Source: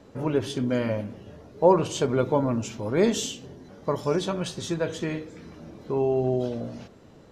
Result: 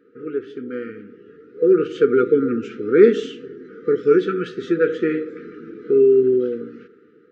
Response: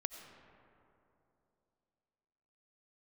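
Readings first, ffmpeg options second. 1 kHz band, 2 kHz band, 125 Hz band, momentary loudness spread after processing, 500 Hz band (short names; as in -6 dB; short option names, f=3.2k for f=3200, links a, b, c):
-4.0 dB, +7.0 dB, -6.0 dB, 21 LU, +9.0 dB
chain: -af "asuperpass=centerf=720:order=4:qfactor=0.6,afftfilt=real='re*(1-between(b*sr/4096,500,1200))':imag='im*(1-between(b*sr/4096,500,1200))':win_size=4096:overlap=0.75,dynaudnorm=f=490:g=7:m=13.5dB,volume=1.5dB"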